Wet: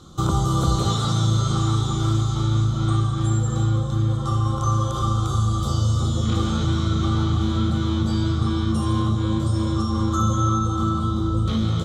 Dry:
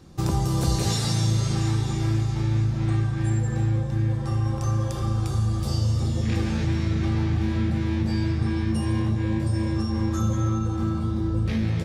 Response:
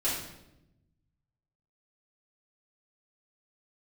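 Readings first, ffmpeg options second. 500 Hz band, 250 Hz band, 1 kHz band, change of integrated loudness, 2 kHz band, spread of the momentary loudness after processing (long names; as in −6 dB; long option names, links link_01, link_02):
+2.5 dB, +2.5 dB, +9.0 dB, +3.0 dB, −2.0 dB, 2 LU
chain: -filter_complex "[0:a]superequalizer=10b=3.16:11b=0.355:12b=0.398:13b=2.82:15b=2.24,acrossover=split=2800[link_01][link_02];[link_02]acompressor=threshold=-37dB:ratio=4:attack=1:release=60[link_03];[link_01][link_03]amix=inputs=2:normalize=0,volume=2.5dB"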